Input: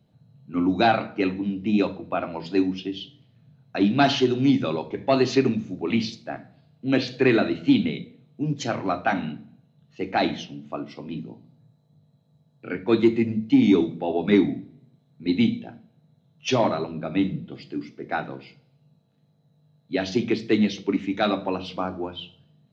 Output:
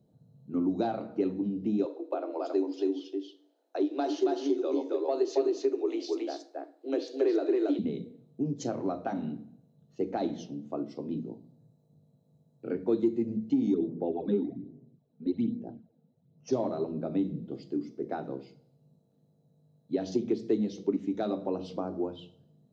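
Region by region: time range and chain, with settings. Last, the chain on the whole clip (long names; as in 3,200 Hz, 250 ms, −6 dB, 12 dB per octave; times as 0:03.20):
0:01.85–0:07.79: Butterworth high-pass 290 Hz 96 dB per octave + single-tap delay 274 ms −3 dB
0:13.74–0:16.53: high-frequency loss of the air 130 metres + all-pass phaser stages 12, 1.2 Hz, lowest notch 100–3,500 Hz
whole clip: downward compressor 2.5 to 1, threshold −28 dBFS; drawn EQ curve 110 Hz 0 dB, 420 Hz +9 dB, 2,400 Hz −13 dB, 6,800 Hz +3 dB; level −6 dB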